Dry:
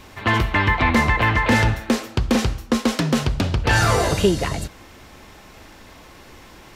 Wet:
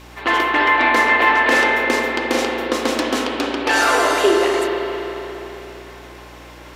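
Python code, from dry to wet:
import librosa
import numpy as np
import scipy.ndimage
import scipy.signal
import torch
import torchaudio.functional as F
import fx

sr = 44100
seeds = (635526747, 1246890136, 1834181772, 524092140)

y = fx.brickwall_highpass(x, sr, low_hz=250.0)
y = fx.rev_spring(y, sr, rt60_s=3.6, pass_ms=(35, 50), chirp_ms=40, drr_db=-1.0)
y = fx.add_hum(y, sr, base_hz=60, snr_db=25)
y = F.gain(torch.from_numpy(y), 1.5).numpy()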